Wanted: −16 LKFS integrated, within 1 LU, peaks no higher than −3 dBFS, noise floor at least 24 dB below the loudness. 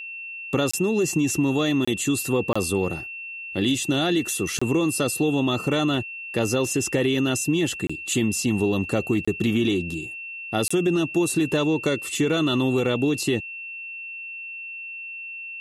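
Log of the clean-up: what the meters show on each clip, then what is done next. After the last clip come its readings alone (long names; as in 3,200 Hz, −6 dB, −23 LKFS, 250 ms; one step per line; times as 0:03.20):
number of dropouts 7; longest dropout 25 ms; interfering tone 2,700 Hz; level of the tone −33 dBFS; integrated loudness −24.0 LKFS; sample peak −10.0 dBFS; target loudness −16.0 LKFS
→ repair the gap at 0:00.71/0:01.85/0:02.53/0:04.59/0:07.87/0:09.25/0:10.68, 25 ms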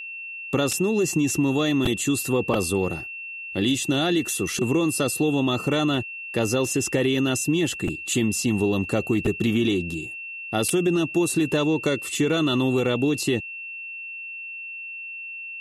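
number of dropouts 0; interfering tone 2,700 Hz; level of the tone −33 dBFS
→ notch filter 2,700 Hz, Q 30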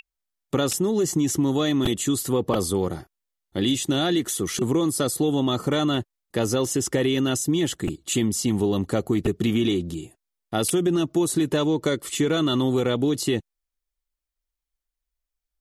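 interfering tone none found; integrated loudness −23.5 LKFS; sample peak −9.0 dBFS; target loudness −16.0 LKFS
→ level +7.5 dB
brickwall limiter −3 dBFS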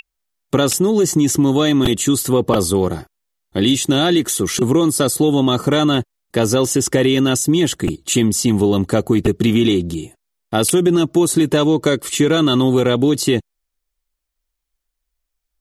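integrated loudness −16.0 LKFS; sample peak −3.0 dBFS; background noise floor −78 dBFS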